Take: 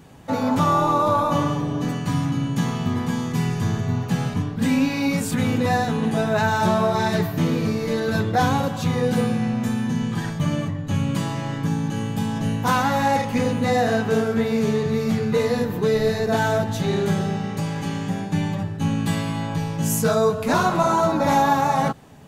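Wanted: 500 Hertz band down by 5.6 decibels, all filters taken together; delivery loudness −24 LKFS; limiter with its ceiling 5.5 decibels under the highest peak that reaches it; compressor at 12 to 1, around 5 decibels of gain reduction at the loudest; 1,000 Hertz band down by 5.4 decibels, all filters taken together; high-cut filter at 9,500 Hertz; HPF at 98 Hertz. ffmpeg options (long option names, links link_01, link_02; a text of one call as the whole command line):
ffmpeg -i in.wav -af "highpass=98,lowpass=9500,equalizer=frequency=500:width_type=o:gain=-5.5,equalizer=frequency=1000:width_type=o:gain=-5,acompressor=threshold=-23dB:ratio=12,volume=5.5dB,alimiter=limit=-15dB:level=0:latency=1" out.wav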